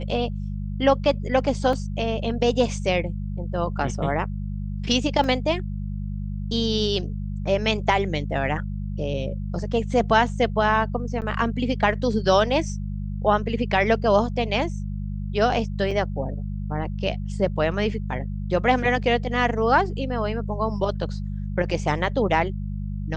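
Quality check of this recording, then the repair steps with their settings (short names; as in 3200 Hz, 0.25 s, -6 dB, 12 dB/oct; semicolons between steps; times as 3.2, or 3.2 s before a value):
hum 50 Hz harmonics 4 -29 dBFS
1.73 gap 2.3 ms
5.24 gap 2.1 ms
11.21–11.22 gap 9.3 ms
15.91 gap 2.6 ms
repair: de-hum 50 Hz, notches 4; interpolate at 1.73, 2.3 ms; interpolate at 5.24, 2.1 ms; interpolate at 11.21, 9.3 ms; interpolate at 15.91, 2.6 ms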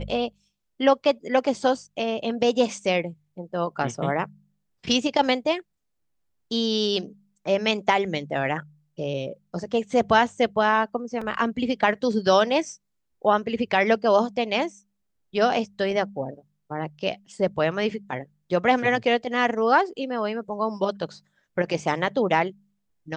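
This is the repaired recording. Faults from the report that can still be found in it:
none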